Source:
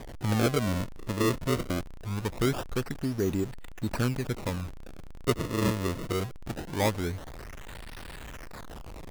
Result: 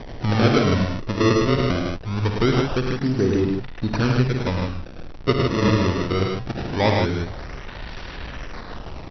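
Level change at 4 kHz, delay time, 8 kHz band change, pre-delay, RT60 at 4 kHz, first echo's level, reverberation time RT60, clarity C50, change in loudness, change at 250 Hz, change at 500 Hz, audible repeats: +9.0 dB, 54 ms, -0.5 dB, no reverb, no reverb, -9.5 dB, no reverb, no reverb, +9.0 dB, +9.0 dB, +9.0 dB, 3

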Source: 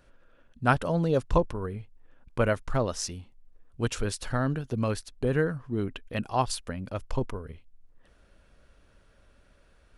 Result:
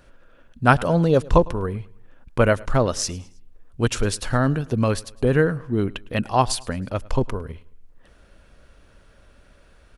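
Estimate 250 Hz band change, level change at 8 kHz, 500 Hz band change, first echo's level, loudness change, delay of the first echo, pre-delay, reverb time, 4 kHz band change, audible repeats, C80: +7.5 dB, +7.5 dB, +7.5 dB, -23.0 dB, +7.5 dB, 106 ms, no reverb, no reverb, +7.5 dB, 2, no reverb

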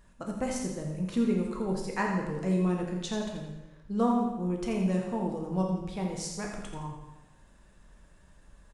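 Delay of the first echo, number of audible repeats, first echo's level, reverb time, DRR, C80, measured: 84 ms, 1, -8.0 dB, 1.0 s, -0.5 dB, 4.0 dB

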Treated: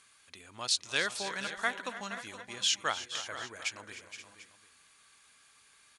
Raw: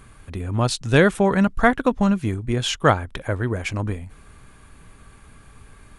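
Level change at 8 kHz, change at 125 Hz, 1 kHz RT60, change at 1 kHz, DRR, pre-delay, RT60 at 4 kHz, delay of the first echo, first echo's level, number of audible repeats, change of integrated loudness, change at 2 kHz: -1.5 dB, -32.5 dB, no reverb, -14.5 dB, no reverb, no reverb, no reverb, 272 ms, -19.5 dB, 5, -12.5 dB, -9.5 dB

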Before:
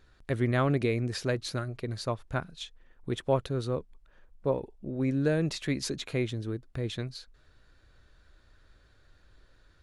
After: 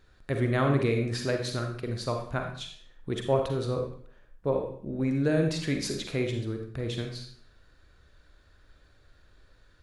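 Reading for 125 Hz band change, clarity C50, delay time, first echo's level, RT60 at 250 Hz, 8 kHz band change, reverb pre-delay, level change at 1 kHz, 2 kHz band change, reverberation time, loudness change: +1.5 dB, 4.5 dB, no echo, no echo, 0.60 s, +1.5 dB, 39 ms, +2.0 dB, +1.5 dB, 0.60 s, +1.5 dB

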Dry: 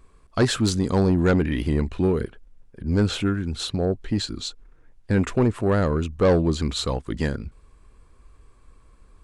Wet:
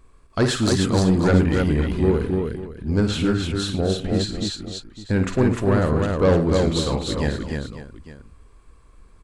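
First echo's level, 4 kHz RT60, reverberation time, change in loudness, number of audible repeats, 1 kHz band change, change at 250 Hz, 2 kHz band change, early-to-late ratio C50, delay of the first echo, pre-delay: -8.0 dB, no reverb, no reverb, +2.0 dB, 6, +2.5 dB, +2.5 dB, +2.5 dB, no reverb, 53 ms, no reverb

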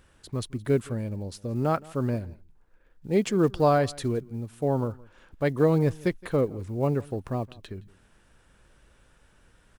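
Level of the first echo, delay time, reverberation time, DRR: -23.0 dB, 168 ms, no reverb, no reverb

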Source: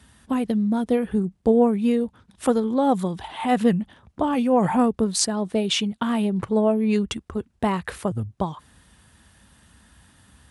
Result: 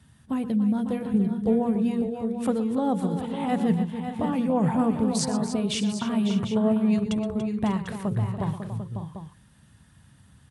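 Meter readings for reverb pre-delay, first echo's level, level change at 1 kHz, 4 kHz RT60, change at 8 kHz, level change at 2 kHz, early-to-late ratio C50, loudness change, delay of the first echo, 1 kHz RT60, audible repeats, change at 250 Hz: no reverb, -13.5 dB, -6.0 dB, no reverb, -6.0 dB, -6.0 dB, no reverb, -3.0 dB, 121 ms, no reverb, 5, -1.0 dB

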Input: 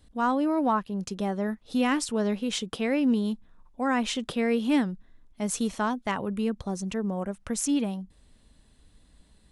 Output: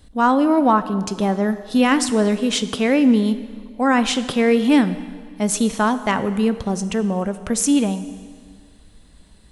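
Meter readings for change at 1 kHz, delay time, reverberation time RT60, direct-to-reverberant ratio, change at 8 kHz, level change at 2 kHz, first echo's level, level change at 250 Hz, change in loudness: +9.5 dB, no echo, 1.8 s, 12.0 dB, +9.0 dB, +9.0 dB, no echo, +9.0 dB, +9.0 dB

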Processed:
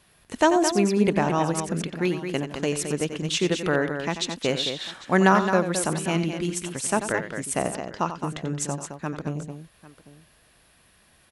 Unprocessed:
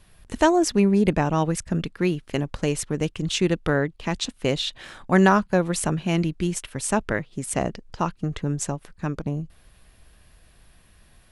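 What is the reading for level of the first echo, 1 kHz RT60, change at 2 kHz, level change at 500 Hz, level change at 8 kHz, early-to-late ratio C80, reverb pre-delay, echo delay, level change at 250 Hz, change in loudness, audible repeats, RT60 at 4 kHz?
-10.5 dB, no reverb, +1.0 dB, 0.0 dB, +1.0 dB, no reverb, no reverb, 89 ms, -2.0 dB, -1.0 dB, 3, no reverb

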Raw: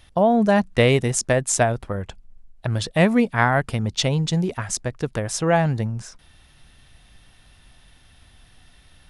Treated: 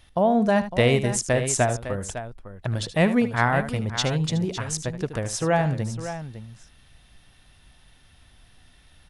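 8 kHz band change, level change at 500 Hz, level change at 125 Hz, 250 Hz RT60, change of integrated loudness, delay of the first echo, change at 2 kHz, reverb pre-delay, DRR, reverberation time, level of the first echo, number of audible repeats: -2.5 dB, -2.5 dB, -2.5 dB, no reverb, -2.5 dB, 76 ms, -2.5 dB, no reverb, no reverb, no reverb, -12.5 dB, 2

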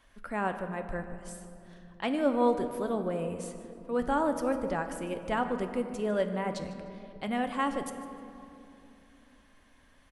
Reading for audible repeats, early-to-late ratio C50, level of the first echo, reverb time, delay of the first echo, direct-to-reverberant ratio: 1, 8.5 dB, -17.0 dB, 2.9 s, 151 ms, 6.5 dB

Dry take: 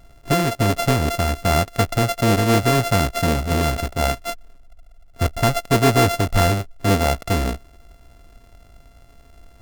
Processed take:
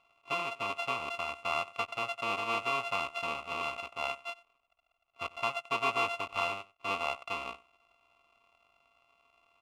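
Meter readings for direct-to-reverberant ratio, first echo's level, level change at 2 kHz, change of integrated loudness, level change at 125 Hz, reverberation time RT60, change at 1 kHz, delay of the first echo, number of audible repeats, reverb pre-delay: no reverb, -20.5 dB, -8.5 dB, -14.5 dB, -34.5 dB, no reverb, -11.5 dB, 93 ms, 1, no reverb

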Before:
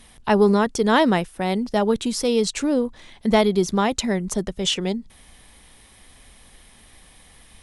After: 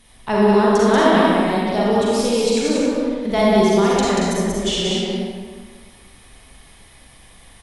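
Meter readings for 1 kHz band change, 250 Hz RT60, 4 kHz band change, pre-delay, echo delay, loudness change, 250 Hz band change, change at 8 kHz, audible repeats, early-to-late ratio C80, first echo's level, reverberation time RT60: +4.5 dB, 1.6 s, +3.0 dB, 37 ms, 186 ms, +4.0 dB, +3.5 dB, +2.0 dB, 1, -3.5 dB, -3.0 dB, 1.7 s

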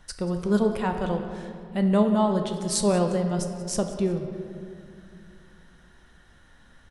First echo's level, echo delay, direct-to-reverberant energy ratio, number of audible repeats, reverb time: -18.0 dB, 183 ms, 4.5 dB, 1, 2.4 s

